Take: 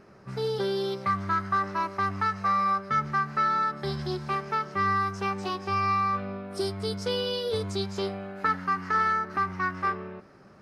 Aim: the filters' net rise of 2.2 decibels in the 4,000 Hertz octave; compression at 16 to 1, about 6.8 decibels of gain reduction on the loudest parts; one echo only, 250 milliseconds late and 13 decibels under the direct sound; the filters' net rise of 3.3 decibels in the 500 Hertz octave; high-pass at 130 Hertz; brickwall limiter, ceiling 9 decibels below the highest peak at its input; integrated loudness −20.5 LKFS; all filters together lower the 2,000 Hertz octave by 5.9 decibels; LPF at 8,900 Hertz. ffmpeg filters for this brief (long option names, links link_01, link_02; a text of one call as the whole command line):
ffmpeg -i in.wav -af "highpass=130,lowpass=8900,equalizer=frequency=500:width_type=o:gain=4.5,equalizer=frequency=2000:width_type=o:gain=-9,equalizer=frequency=4000:width_type=o:gain=5.5,acompressor=threshold=-29dB:ratio=16,alimiter=level_in=3dB:limit=-24dB:level=0:latency=1,volume=-3dB,aecho=1:1:250:0.224,volume=15dB" out.wav